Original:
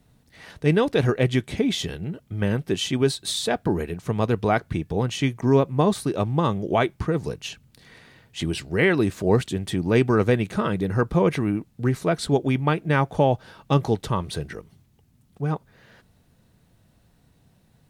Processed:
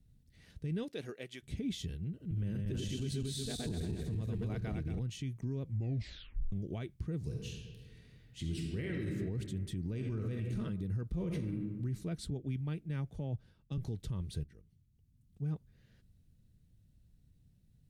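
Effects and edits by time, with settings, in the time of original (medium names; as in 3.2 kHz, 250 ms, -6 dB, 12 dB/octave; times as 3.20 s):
0.83–1.42 s: high-pass 290 Hz -> 720 Hz
2.08–4.99 s: backward echo that repeats 115 ms, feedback 63%, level 0 dB
5.62 s: tape stop 0.90 s
7.17–9.12 s: reverb throw, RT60 1.6 s, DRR -0.5 dB
9.86–10.60 s: reverb throw, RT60 0.86 s, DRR 3.5 dB
11.10–11.69 s: reverb throw, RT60 1.1 s, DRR 3 dB
12.30–13.78 s: three bands expanded up and down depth 70%
14.44–15.43 s: fade in linear, from -13 dB
whole clip: amplifier tone stack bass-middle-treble 10-0-1; peak limiter -35 dBFS; trim +5.5 dB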